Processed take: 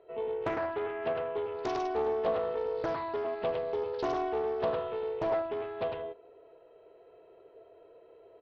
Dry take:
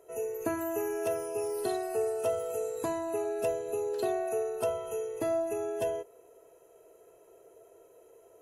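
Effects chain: Chebyshev low-pass 4300 Hz, order 10; on a send: echo 0.105 s -3.5 dB; on the sum: Doppler distortion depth 0.75 ms

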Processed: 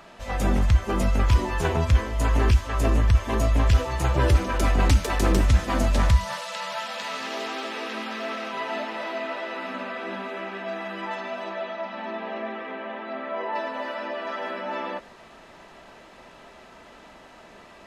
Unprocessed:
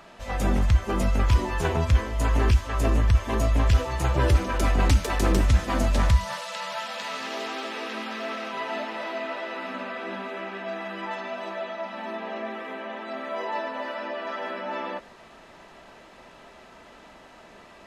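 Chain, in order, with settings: 11.43–13.54 LPF 6600 Hz -> 2600 Hz 12 dB/oct; gain +1 dB

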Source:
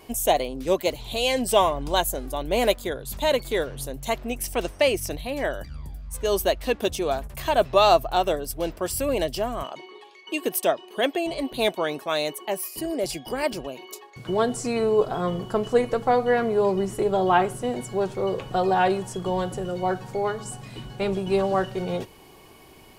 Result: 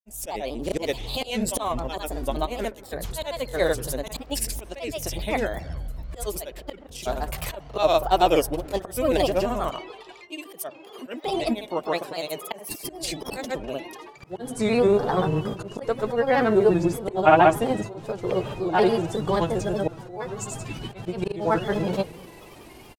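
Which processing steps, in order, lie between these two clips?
auto swell 0.338 s; analogue delay 84 ms, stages 1024, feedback 65%, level -19 dB; grains, grains 21/s, pitch spread up and down by 3 st; gain +5 dB

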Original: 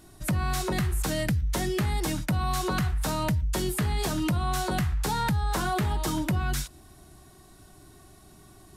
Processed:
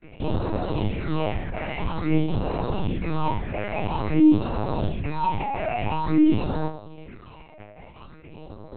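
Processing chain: rattling part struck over -29 dBFS, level -42 dBFS; HPF 87 Hz 12 dB/oct; fuzz box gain 45 dB, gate -51 dBFS; sample-and-hold 26×; phaser stages 6, 0.49 Hz, lowest notch 290–2500 Hz; resonator bank G#2 fifth, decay 0.38 s; LPC vocoder at 8 kHz pitch kept; gain +4.5 dB

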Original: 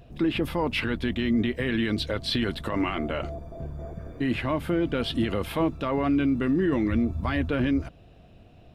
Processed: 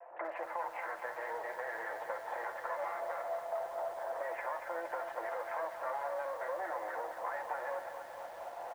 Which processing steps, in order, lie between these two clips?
minimum comb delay 5.8 ms; recorder AGC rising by 14 dB/s; elliptic band-pass 560–1900 Hz, stop band 50 dB; bell 890 Hz +7.5 dB 0.67 oct; notch 1200 Hz, Q 16; compressor 4:1, threshold -43 dBFS, peak gain reduction 16.5 dB; air absorption 210 m; early reflections 12 ms -13.5 dB, 65 ms -13 dB; lo-fi delay 0.232 s, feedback 80%, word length 10-bit, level -9 dB; gain +5 dB

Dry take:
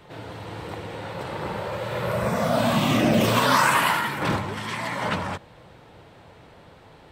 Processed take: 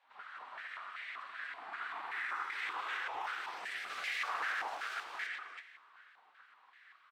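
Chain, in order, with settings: 3.89–5.03 half-waves squared off; limiter -18.5 dBFS, peak gain reduction 10.5 dB; spectral gate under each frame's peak -15 dB weak; overloaded stage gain 27 dB; on a send: echo 0.237 s -3.5 dB; on the sum: plate-style reverb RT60 1.9 s, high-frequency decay 0.95×, DRR 13 dB; stepped band-pass 5.2 Hz 870–2000 Hz; gain +4 dB

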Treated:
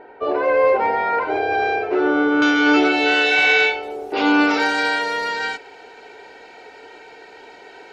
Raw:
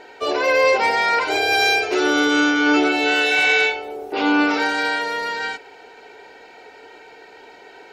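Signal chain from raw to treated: LPF 1300 Hz 12 dB/oct, from 2.42 s 5300 Hz, from 3.83 s 11000 Hz; gain +1.5 dB

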